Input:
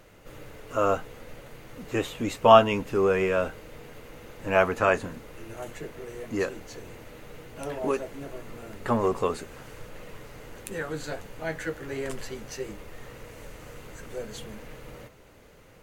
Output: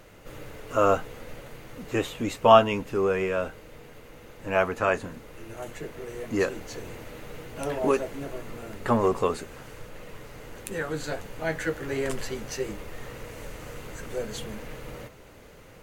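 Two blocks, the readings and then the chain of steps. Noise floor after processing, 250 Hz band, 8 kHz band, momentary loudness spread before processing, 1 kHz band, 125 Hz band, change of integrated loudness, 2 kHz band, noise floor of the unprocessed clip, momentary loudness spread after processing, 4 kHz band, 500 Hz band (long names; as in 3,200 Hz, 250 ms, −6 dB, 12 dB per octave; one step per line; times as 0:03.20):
−49 dBFS, +1.0 dB, +2.5 dB, 22 LU, 0.0 dB, +1.0 dB, −0.5 dB, 0.0 dB, −53 dBFS, 20 LU, +0.5 dB, 0.0 dB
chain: speech leveller within 4 dB 2 s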